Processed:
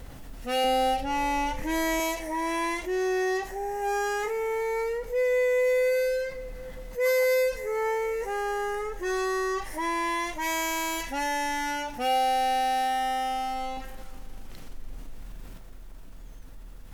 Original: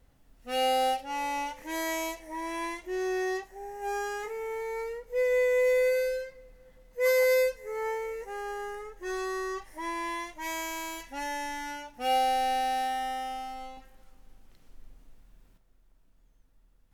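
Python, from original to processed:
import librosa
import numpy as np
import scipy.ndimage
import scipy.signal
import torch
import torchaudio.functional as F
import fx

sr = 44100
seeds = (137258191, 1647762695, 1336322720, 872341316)

y = fx.bass_treble(x, sr, bass_db=13, treble_db=-2, at=(0.64, 2.0))
y = fx.env_flatten(y, sr, amount_pct=50)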